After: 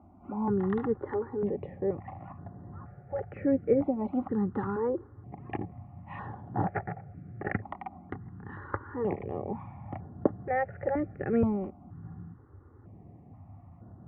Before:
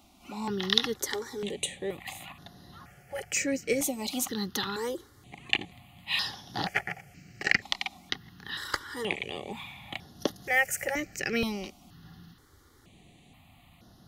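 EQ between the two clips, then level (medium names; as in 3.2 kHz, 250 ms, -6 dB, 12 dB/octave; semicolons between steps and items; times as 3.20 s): high-pass 57 Hz; Bessel low-pass 850 Hz, order 6; peaking EQ 99 Hz +10 dB 0.47 oct; +5.0 dB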